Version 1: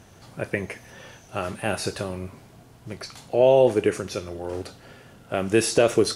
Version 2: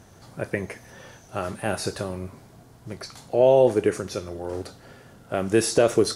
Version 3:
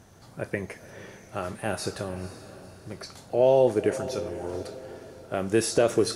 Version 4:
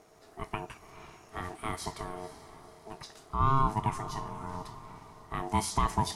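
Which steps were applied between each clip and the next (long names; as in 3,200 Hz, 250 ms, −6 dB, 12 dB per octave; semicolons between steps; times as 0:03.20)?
parametric band 2,700 Hz −5.5 dB 0.69 octaves
feedback delay with all-pass diffusion 490 ms, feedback 47%, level −13.5 dB; level −3 dB
ring modulation 540 Hz; level −3 dB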